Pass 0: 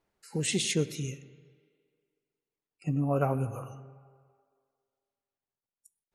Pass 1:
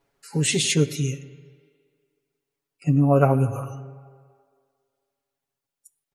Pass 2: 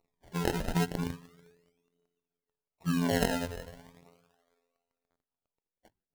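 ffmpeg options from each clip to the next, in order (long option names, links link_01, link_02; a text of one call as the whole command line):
ffmpeg -i in.wav -af "aecho=1:1:7.2:0.78,volume=5.5dB" out.wav
ffmpeg -i in.wav -af "afftfilt=real='hypot(re,im)*cos(PI*b)':imag='0':win_size=2048:overlap=0.75,acrusher=samples=26:mix=1:aa=0.000001:lfo=1:lforange=26:lforate=0.36,aphaser=in_gain=1:out_gain=1:delay=2.4:decay=0.37:speed=0.97:type=triangular,volume=-5.5dB" out.wav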